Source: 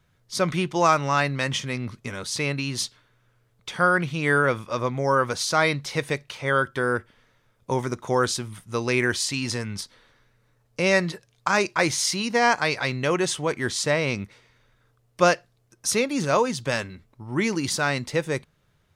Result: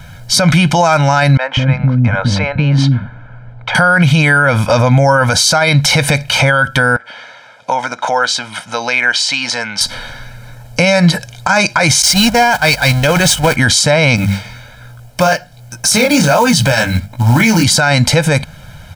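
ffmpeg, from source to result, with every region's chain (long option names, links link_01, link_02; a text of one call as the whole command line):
ffmpeg -i in.wav -filter_complex "[0:a]asettb=1/sr,asplit=3[link_01][link_02][link_03];[link_01]atrim=end=1.374[link_04];[link_02]atrim=start=1.37:end=3.75,asetpts=PTS-STARTPTS,afade=type=in:duration=0.004:curve=qsin,afade=type=out:start_time=2.376:duration=0.004:curve=qsin,lowpass=1500,acompressor=threshold=-45dB:ratio=2:attack=3.2:release=140:knee=1:detection=peak,acrossover=split=450[link_05][link_06];[link_05]adelay=200[link_07];[link_07][link_06]amix=inputs=2:normalize=0,atrim=end_sample=104958[link_08];[link_03]atrim=start=3.746[link_09];[link_04][link_08]acrossfade=duration=0.004:curve1=hsin:curve2=qsin[link_10];[link_10][link_09]acrossfade=duration=0.004:curve1=qsin:curve2=hsin,asettb=1/sr,asplit=3[link_11][link_12][link_13];[link_11]atrim=end=6.964[link_14];[link_12]atrim=start=6.96:end=9.81,asetpts=PTS-STARTPTS,afade=type=in:duration=0.004:curve=qsin,afade=type=out:start_time=2.846:duration=0.004:curve=qsin,acompressor=threshold=-42dB:ratio=3:attack=3.2:release=140:knee=1:detection=peak,highpass=490,lowpass=4900[link_15];[link_13]atrim=start=9.806[link_16];[link_14][link_15]acrossfade=duration=0.004:curve1=hsin:curve2=qsin[link_17];[link_17][link_16]acrossfade=duration=0.004:curve1=qsin:curve2=hsin,asettb=1/sr,asplit=3[link_18][link_19][link_20];[link_18]atrim=end=12.024[link_21];[link_19]atrim=start=12.02:end=13.56,asetpts=PTS-STARTPTS,afade=type=in:duration=0.004:curve=qsin,afade=type=out:start_time=1.536:duration=0.004:curve=qsin,aeval=exprs='val(0)+0.5*0.0596*sgn(val(0))':channel_layout=same,agate=range=-22dB:threshold=-23dB:ratio=16:release=100:detection=peak,aeval=exprs='val(0)+0.00178*(sin(2*PI*50*n/s)+sin(2*PI*2*50*n/s)/2+sin(2*PI*3*50*n/s)/3+sin(2*PI*4*50*n/s)/4+sin(2*PI*5*50*n/s)/5)':channel_layout=same[link_22];[link_20]atrim=start=13.556[link_23];[link_21][link_22]acrossfade=duration=0.004:curve1=hsin:curve2=qsin[link_24];[link_24][link_23]acrossfade=duration=0.004:curve1=qsin:curve2=hsin,asettb=1/sr,asplit=3[link_25][link_26][link_27];[link_25]atrim=end=14.164[link_28];[link_26]atrim=start=14.16:end=17.64,asetpts=PTS-STARTPTS,afade=type=in:duration=0.004:curve=qsin,afade=type=out:start_time=3.476:duration=0.004:curve=qsin,bandreject=frequency=50:width_type=h:width=6,bandreject=frequency=100:width_type=h:width=6,bandreject=frequency=150:width_type=h:width=6,bandreject=frequency=200:width_type=h:width=6,flanger=delay=16.5:depth=7.8:speed=1.3,acrusher=bits=5:mode=log:mix=0:aa=0.000001[link_29];[link_27]atrim=start=17.636[link_30];[link_28][link_29]acrossfade=duration=0.004:curve1=hsin:curve2=qsin[link_31];[link_31][link_30]acrossfade=duration=0.004:curve1=qsin:curve2=hsin,aecho=1:1:1.3:0.93,acompressor=threshold=-28dB:ratio=6,alimiter=level_in=28.5dB:limit=-1dB:release=50:level=0:latency=1,volume=-1dB" out.wav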